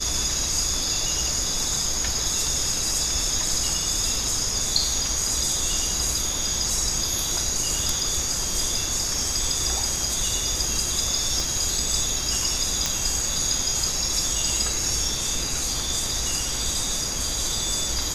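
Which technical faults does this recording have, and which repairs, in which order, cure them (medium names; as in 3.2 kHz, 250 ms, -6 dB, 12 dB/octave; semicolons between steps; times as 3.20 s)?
11.40 s: pop
12.86 s: pop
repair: de-click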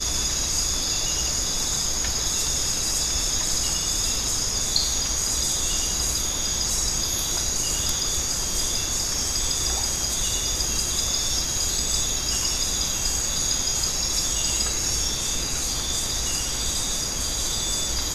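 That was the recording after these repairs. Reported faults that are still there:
11.40 s: pop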